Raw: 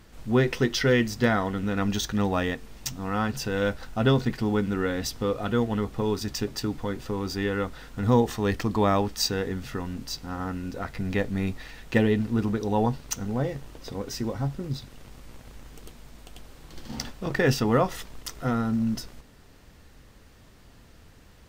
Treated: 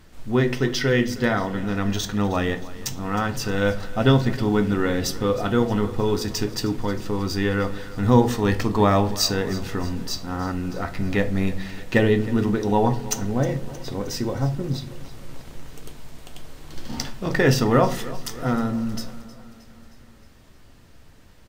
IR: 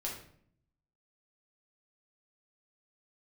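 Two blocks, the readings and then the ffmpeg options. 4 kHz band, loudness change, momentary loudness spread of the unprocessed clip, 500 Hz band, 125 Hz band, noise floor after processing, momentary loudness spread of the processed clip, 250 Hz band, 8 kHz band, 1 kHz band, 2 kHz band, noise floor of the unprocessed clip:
+4.0 dB, +4.0 dB, 12 LU, +4.0 dB, +4.5 dB, −48 dBFS, 12 LU, +3.5 dB, +4.5 dB, +4.0 dB, +3.5 dB, −53 dBFS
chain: -filter_complex "[0:a]dynaudnorm=framelen=290:gausssize=21:maxgain=4dB,aecho=1:1:313|626|939|1252|1565:0.126|0.0743|0.0438|0.0259|0.0153,asplit=2[link_01][link_02];[1:a]atrim=start_sample=2205,asetrate=70560,aresample=44100[link_03];[link_02][link_03]afir=irnorm=-1:irlink=0,volume=-1dB[link_04];[link_01][link_04]amix=inputs=2:normalize=0,volume=-2dB"

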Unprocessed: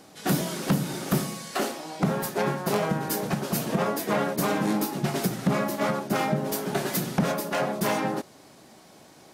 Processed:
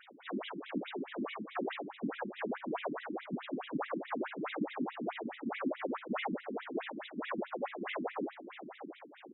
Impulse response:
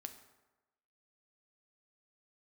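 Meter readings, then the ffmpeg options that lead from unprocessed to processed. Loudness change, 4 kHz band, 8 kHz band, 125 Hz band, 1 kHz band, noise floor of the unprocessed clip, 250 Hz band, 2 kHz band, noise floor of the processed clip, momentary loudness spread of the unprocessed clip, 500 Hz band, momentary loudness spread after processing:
−12.5 dB, −13.5 dB, below −40 dB, −22.5 dB, −11.5 dB, −52 dBFS, −11.0 dB, −9.5 dB, −56 dBFS, 3 LU, −11.5 dB, 5 LU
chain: -filter_complex "[0:a]bandreject=frequency=78.64:width_type=h:width=4,bandreject=frequency=157.28:width_type=h:width=4,bandreject=frequency=235.92:width_type=h:width=4,bandreject=frequency=314.56:width_type=h:width=4,bandreject=frequency=393.2:width_type=h:width=4,bandreject=frequency=471.84:width_type=h:width=4,bandreject=frequency=550.48:width_type=h:width=4,bandreject=frequency=629.12:width_type=h:width=4,bandreject=frequency=707.76:width_type=h:width=4,bandreject=frequency=786.4:width_type=h:width=4,bandreject=frequency=865.04:width_type=h:width=4,bandreject=frequency=943.68:width_type=h:width=4,bandreject=frequency=1022.32:width_type=h:width=4,bandreject=frequency=1100.96:width_type=h:width=4,bandreject=frequency=1179.6:width_type=h:width=4,bandreject=frequency=1258.24:width_type=h:width=4,bandreject=frequency=1336.88:width_type=h:width=4,bandreject=frequency=1415.52:width_type=h:width=4,bandreject=frequency=1494.16:width_type=h:width=4,bandreject=frequency=1572.8:width_type=h:width=4,bandreject=frequency=1651.44:width_type=h:width=4,bandreject=frequency=1730.08:width_type=h:width=4,bandreject=frequency=1808.72:width_type=h:width=4,bandreject=frequency=1887.36:width_type=h:width=4,bandreject=frequency=1966:width_type=h:width=4,bandreject=frequency=2044.64:width_type=h:width=4,bandreject=frequency=2123.28:width_type=h:width=4,bandreject=frequency=2201.92:width_type=h:width=4,bandreject=frequency=2280.56:width_type=h:width=4,bandreject=frequency=2359.2:width_type=h:width=4,bandreject=frequency=2437.84:width_type=h:width=4,bandreject=frequency=2516.48:width_type=h:width=4,bandreject=frequency=2595.12:width_type=h:width=4,bandreject=frequency=2673.76:width_type=h:width=4,bandreject=frequency=2752.4:width_type=h:width=4,bandreject=frequency=2831.04:width_type=h:width=4,areverse,acompressor=threshold=-35dB:ratio=5,areverse,asplit=2[link_01][link_02];[link_02]adelay=29,volume=-11dB[link_03];[link_01][link_03]amix=inputs=2:normalize=0,afftfilt=real='hypot(re,im)*cos(2*PI*random(0))':imag='hypot(re,im)*sin(2*PI*random(1))':win_size=512:overlap=0.75,aresample=16000,volume=35.5dB,asoftclip=hard,volume=-35.5dB,aresample=44100,aecho=1:1:659|1318|1977:0.237|0.0522|0.0115,afftfilt=real='re*between(b*sr/1024,240*pow(2800/240,0.5+0.5*sin(2*PI*4.7*pts/sr))/1.41,240*pow(2800/240,0.5+0.5*sin(2*PI*4.7*pts/sr))*1.41)':imag='im*between(b*sr/1024,240*pow(2800/240,0.5+0.5*sin(2*PI*4.7*pts/sr))/1.41,240*pow(2800/240,0.5+0.5*sin(2*PI*4.7*pts/sr))*1.41)':win_size=1024:overlap=0.75,volume=12.5dB"

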